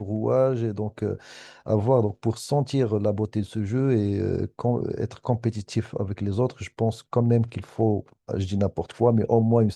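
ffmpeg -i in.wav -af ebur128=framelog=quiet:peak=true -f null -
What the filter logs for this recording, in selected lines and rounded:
Integrated loudness:
  I:         -25.1 LUFS
  Threshold: -35.2 LUFS
Loudness range:
  LRA:         2.0 LU
  Threshold: -45.7 LUFS
  LRA low:   -26.7 LUFS
  LRA high:  -24.7 LUFS
True peak:
  Peak:       -6.4 dBFS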